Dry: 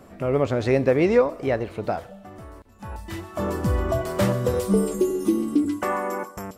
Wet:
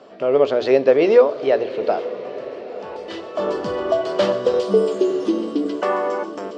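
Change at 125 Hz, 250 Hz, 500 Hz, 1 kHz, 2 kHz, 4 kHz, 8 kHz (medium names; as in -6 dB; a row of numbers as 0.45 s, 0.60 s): -11.5 dB, -0.5 dB, +6.5 dB, +4.0 dB, +2.0 dB, +7.5 dB, no reading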